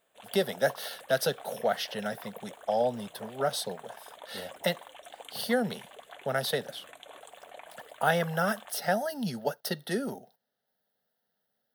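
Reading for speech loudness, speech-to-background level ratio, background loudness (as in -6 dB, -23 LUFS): -31.5 LUFS, 17.0 dB, -48.5 LUFS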